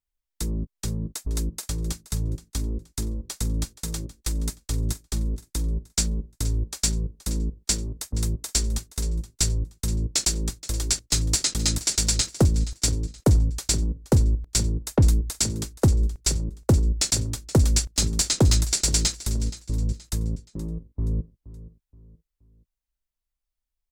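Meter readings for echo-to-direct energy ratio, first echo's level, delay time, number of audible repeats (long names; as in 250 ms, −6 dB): −16.0 dB, −16.5 dB, 474 ms, 3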